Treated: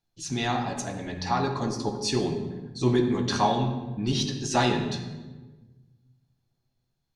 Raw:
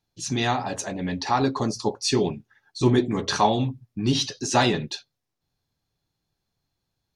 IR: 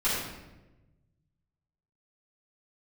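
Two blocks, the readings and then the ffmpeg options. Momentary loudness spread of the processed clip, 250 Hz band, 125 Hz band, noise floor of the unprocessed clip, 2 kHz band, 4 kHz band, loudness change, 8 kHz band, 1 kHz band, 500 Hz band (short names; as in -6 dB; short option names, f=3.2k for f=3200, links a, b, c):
10 LU, -2.0 dB, -1.5 dB, -81 dBFS, -3.5 dB, -3.5 dB, -3.0 dB, -4.0 dB, -2.5 dB, -3.0 dB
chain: -filter_complex "[0:a]asplit=2[a][b];[b]lowshelf=f=220:g=5[c];[1:a]atrim=start_sample=2205,asetrate=35721,aresample=44100[d];[c][d]afir=irnorm=-1:irlink=0,volume=-16.5dB[e];[a][e]amix=inputs=2:normalize=0,volume=-5.5dB"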